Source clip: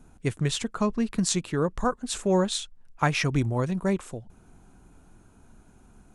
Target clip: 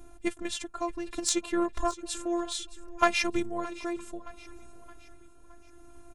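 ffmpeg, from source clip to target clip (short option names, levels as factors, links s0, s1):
-filter_complex "[0:a]equalizer=f=620:t=o:w=0.27:g=4,asplit=2[s0][s1];[s1]acompressor=threshold=0.0178:ratio=6,volume=1.26[s2];[s0][s2]amix=inputs=2:normalize=0,tremolo=f=0.65:d=0.49,aeval=exprs='0.473*(cos(1*acos(clip(val(0)/0.473,-1,1)))-cos(1*PI/2))+0.075*(cos(3*acos(clip(val(0)/0.473,-1,1)))-cos(3*PI/2))':c=same,afftfilt=real='hypot(re,im)*cos(PI*b)':imag='0':win_size=512:overlap=0.75,asplit=2[s3][s4];[s4]aecho=0:1:619|1238|1857|2476:0.126|0.0592|0.0278|0.0131[s5];[s3][s5]amix=inputs=2:normalize=0,volume=1.88"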